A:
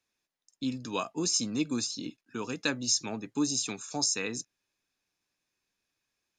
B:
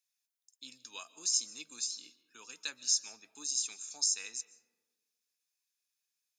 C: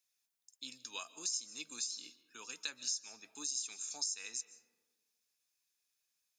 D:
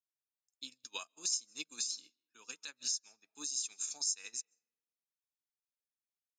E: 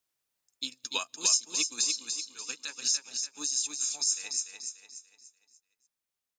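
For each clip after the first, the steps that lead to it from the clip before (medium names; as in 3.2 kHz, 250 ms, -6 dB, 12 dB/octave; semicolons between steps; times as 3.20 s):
differentiator; reverberation RT60 1.4 s, pre-delay 100 ms, DRR 17 dB
compression 4:1, threshold -39 dBFS, peak gain reduction 13 dB; trim +2.5 dB
peak limiter -31 dBFS, peak gain reduction 9 dB; upward expansion 2.5:1, over -59 dBFS; trim +8.5 dB
gain riding within 4 dB 2 s; on a send: feedback delay 292 ms, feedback 40%, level -6 dB; on the sum: trim +8.5 dB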